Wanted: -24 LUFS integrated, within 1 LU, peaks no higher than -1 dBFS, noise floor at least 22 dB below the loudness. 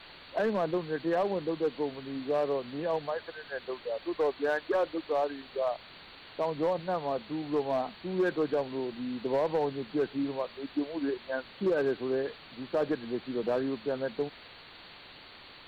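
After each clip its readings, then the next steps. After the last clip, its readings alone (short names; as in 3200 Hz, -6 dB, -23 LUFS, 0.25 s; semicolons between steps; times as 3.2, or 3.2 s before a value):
clipped 1.1%; flat tops at -22.0 dBFS; noise floor -51 dBFS; noise floor target -54 dBFS; loudness -32.0 LUFS; peak -22.0 dBFS; loudness target -24.0 LUFS
-> clip repair -22 dBFS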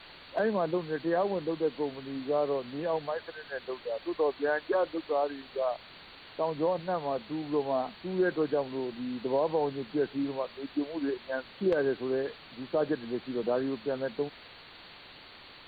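clipped 0.0%; noise floor -51 dBFS; noise floor target -54 dBFS
-> noise print and reduce 6 dB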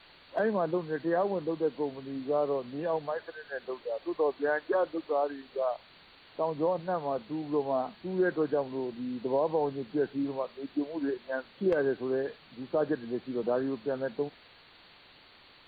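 noise floor -57 dBFS; loudness -32.0 LUFS; peak -13.5 dBFS; loudness target -24.0 LUFS
-> gain +8 dB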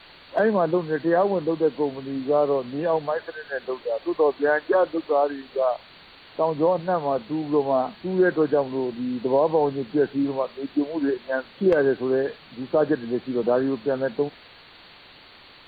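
loudness -24.0 LUFS; peak -5.5 dBFS; noise floor -49 dBFS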